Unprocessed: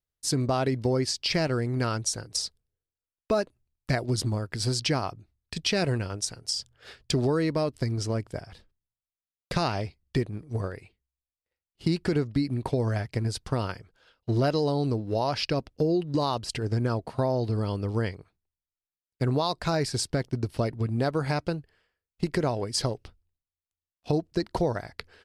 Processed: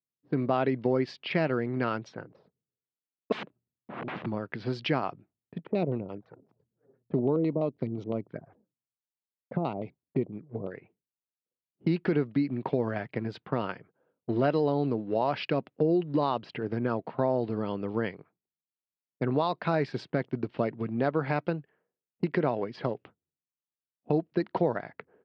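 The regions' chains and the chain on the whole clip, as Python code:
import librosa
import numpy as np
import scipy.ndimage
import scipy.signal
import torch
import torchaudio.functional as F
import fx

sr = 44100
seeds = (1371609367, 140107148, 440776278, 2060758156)

y = fx.chain(x, sr, fx.overflow_wrap(gain_db=29.5),
    fx.bass_treble(bass_db=5, treble_db=2), at=(3.32, 4.26))
y = fx.chain(y, sr, fx.peak_eq(hz=2900.0, db=-7.5, octaves=0.44),
    fx.filter_lfo_lowpass(shape='square', hz=5.9, low_hz=630.0, high_hz=5900.0, q=0.76),
    fx.env_flanger(rest_ms=10.1, full_db=-27.0), at=(5.58, 10.75))
y = scipy.signal.sosfilt(scipy.signal.butter(4, 3100.0, 'lowpass', fs=sr, output='sos'), y)
y = fx.env_lowpass(y, sr, base_hz=310.0, full_db=-26.0)
y = scipy.signal.sosfilt(scipy.signal.butter(4, 150.0, 'highpass', fs=sr, output='sos'), y)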